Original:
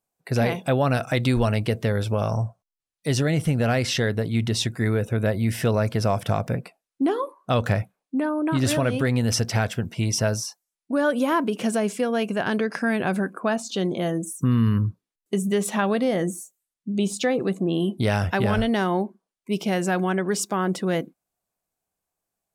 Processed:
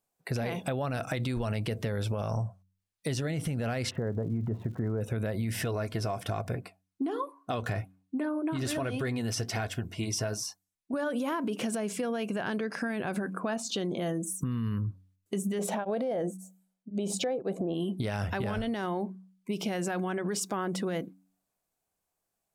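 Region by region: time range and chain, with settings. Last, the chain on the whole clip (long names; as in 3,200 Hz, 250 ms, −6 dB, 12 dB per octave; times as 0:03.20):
0:03.89–0:05.00: one scale factor per block 7 bits + low-pass filter 1,200 Hz 24 dB per octave + surface crackle 190 per second −47 dBFS
0:05.63–0:10.94: comb filter 2.8 ms, depth 37% + flanger 1.2 Hz, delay 1 ms, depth 5.8 ms, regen −63%
0:15.59–0:17.74: parametric band 520 Hz +14.5 dB 1.9 octaves + comb filter 1.3 ms, depth 30% + tremolo along a rectified sine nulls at 1.9 Hz
whole clip: hum removal 93.93 Hz, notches 3; brickwall limiter −19 dBFS; downward compressor, threshold −28 dBFS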